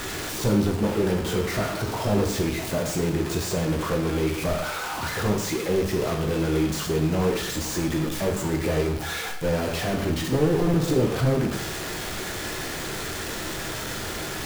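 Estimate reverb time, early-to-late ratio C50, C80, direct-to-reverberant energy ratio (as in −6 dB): 0.65 s, 7.0 dB, 10.0 dB, 2.5 dB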